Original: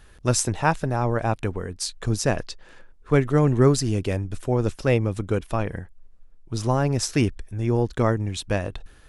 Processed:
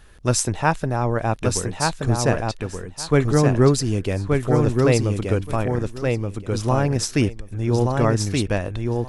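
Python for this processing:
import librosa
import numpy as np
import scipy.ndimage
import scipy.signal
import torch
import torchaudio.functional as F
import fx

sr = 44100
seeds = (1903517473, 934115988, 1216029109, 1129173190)

y = fx.echo_feedback(x, sr, ms=1176, feedback_pct=16, wet_db=-3.5)
y = y * librosa.db_to_amplitude(1.5)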